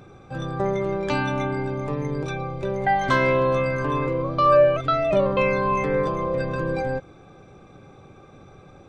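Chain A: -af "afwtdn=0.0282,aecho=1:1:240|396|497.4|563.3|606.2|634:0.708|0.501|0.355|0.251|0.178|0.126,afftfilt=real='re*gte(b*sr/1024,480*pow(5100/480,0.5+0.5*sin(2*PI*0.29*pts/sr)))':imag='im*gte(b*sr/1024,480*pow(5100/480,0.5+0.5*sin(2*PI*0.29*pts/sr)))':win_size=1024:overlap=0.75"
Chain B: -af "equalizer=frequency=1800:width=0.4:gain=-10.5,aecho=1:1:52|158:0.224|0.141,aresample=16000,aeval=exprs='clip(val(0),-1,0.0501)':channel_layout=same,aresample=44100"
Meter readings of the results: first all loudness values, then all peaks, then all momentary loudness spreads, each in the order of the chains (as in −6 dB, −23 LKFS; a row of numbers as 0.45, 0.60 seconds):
−25.0, −29.0 LKFS; −10.0, −13.5 dBFS; 19, 6 LU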